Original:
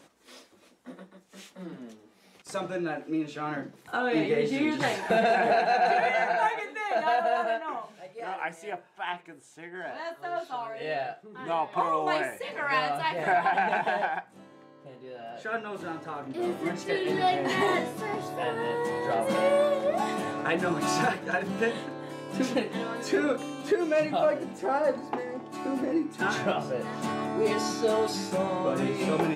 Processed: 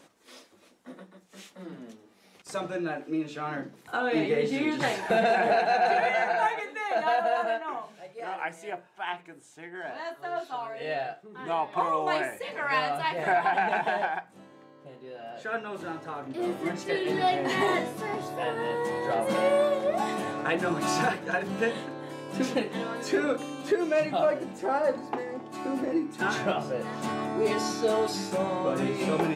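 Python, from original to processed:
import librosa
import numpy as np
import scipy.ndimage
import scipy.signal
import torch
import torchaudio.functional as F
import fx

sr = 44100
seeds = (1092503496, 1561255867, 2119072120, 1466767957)

y = fx.hum_notches(x, sr, base_hz=60, count=5)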